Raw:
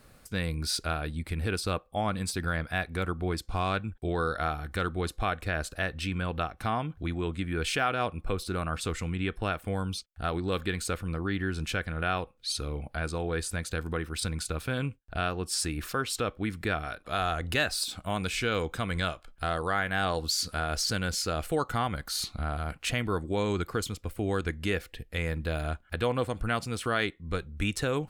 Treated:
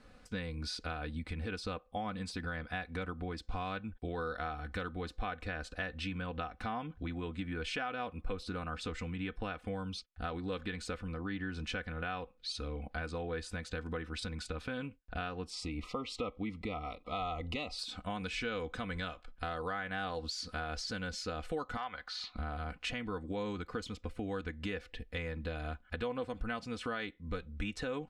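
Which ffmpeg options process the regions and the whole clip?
ffmpeg -i in.wav -filter_complex "[0:a]asettb=1/sr,asplit=3[link_01][link_02][link_03];[link_01]atrim=end=15.504[link_04];[link_02]atrim=start=15.5:end=17.79,asetpts=PTS-STARTPTS,afade=type=in:duration=0.004:curve=qsin,afade=type=out:start_time=2.286:duration=0.004:curve=qsin,asuperstop=centerf=1600:order=12:qfactor=2.6,highshelf=frequency=6300:gain=-9.5[link_05];[link_03]atrim=start=17.786[link_06];[link_04][link_05]acrossfade=duration=0.004:curve1=hsin:curve2=qsin[link_07];[link_07][link_06]acrossfade=duration=0.004:curve1=qsin:curve2=hsin,asettb=1/sr,asplit=3[link_08][link_09][link_10];[link_08]atrim=end=21.774[link_11];[link_09]atrim=start=21.77:end=22.36,asetpts=PTS-STARTPTS,afade=type=in:duration=0.004:curve=qsin,afade=type=out:start_time=0.586:duration=0.004:curve=qsin,acrossover=split=600 5000:gain=0.141 1 0.126[link_12][link_13][link_14];[link_12][link_13][link_14]amix=inputs=3:normalize=0,asoftclip=type=hard:threshold=-20dB[link_15];[link_10]atrim=start=22.356[link_16];[link_11][link_15]acrossfade=duration=0.004:curve1=hsin:curve2=qsin[link_17];[link_17][link_16]acrossfade=duration=0.004:curve1=qsin:curve2=hsin,acompressor=threshold=-32dB:ratio=6,lowpass=4900,aecho=1:1:4:0.56,volume=-3dB" out.wav

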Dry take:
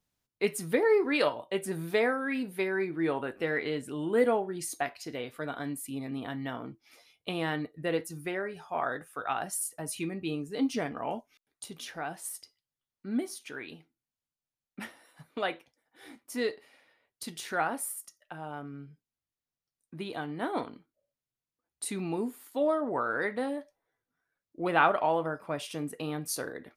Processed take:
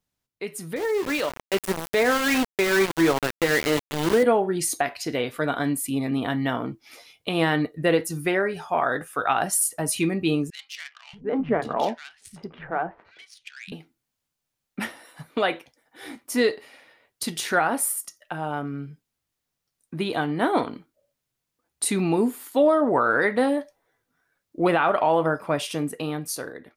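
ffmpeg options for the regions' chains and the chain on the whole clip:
ffmpeg -i in.wav -filter_complex "[0:a]asettb=1/sr,asplit=3[link_01][link_02][link_03];[link_01]atrim=end=0.764[link_04];[link_02]atrim=start=0.76:end=4.23,asetpts=PTS-STARTPTS,afade=type=in:duration=0.004:curve=qsin,afade=type=out:start_time=3.466:duration=0.004:curve=qsin,highpass=120,aeval=exprs='val(0)*gte(abs(val(0)),0.0266)':channel_layout=same[link_05];[link_03]atrim=start=4.226[link_06];[link_04][link_05]acrossfade=duration=0.004:curve1=hsin:curve2=qsin[link_07];[link_07][link_06]acrossfade=duration=0.004:curve1=qsin:curve2=hsin,asettb=1/sr,asplit=3[link_08][link_09][link_10];[link_08]atrim=end=10.504[link_11];[link_09]atrim=start=10.5:end=13.72,asetpts=PTS-STARTPTS,afade=type=in:duration=0.004:curve=qsin,afade=type=out:start_time=3.216:duration=0.004:curve=qsin,bandreject=frequency=280:width=5.6,adynamicsmooth=sensitivity=8:basefreq=1700,acrossover=split=160|2100[link_12][link_13][link_14];[link_12]adelay=630[link_15];[link_13]adelay=740[link_16];[link_15][link_16][link_14]amix=inputs=3:normalize=0,atrim=end_sample=142002[link_17];[link_10]atrim=start=13.716[link_18];[link_11][link_17]acrossfade=duration=0.004:curve1=hsin:curve2=qsin[link_19];[link_19][link_18]acrossfade=duration=0.004:curve1=qsin:curve2=hsin,alimiter=limit=-21.5dB:level=0:latency=1:release=118,dynaudnorm=framelen=300:gausssize=9:maxgain=11dB" out.wav

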